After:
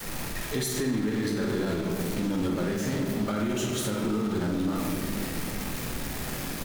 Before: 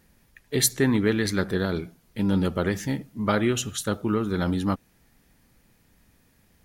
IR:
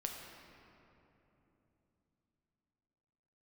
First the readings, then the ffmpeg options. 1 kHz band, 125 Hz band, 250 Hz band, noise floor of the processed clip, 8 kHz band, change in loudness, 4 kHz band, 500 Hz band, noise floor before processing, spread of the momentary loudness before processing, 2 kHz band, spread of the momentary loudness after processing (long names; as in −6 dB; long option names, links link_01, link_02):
−3.0 dB, −3.0 dB, −2.0 dB, −34 dBFS, −4.5 dB, −4.0 dB, −3.0 dB, −3.0 dB, −63 dBFS, 8 LU, −3.5 dB, 5 LU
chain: -filter_complex "[0:a]aeval=exprs='val(0)+0.5*0.0708*sgn(val(0))':channel_layout=same,acrossover=split=530|1200[link_01][link_02][link_03];[link_01]acrusher=bits=5:mix=0:aa=0.000001[link_04];[link_04][link_02][link_03]amix=inputs=3:normalize=0[link_05];[1:a]atrim=start_sample=2205,asetrate=79380,aresample=44100[link_06];[link_05][link_06]afir=irnorm=-1:irlink=0,adynamicequalizer=threshold=0.0141:dfrequency=260:dqfactor=0.87:tfrequency=260:tqfactor=0.87:attack=5:release=100:ratio=0.375:range=2:mode=boostabove:tftype=bell,asplit=2[link_07][link_08];[link_08]adelay=47,volume=-8dB[link_09];[link_07][link_09]amix=inputs=2:normalize=0,alimiter=limit=-19.5dB:level=0:latency=1:release=87,equalizer=frequency=74:width_type=o:width=0.32:gain=-12"